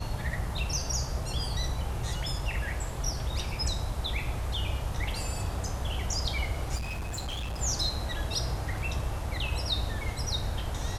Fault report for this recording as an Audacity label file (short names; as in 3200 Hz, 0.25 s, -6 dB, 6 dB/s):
6.750000	7.610000	clipped -31 dBFS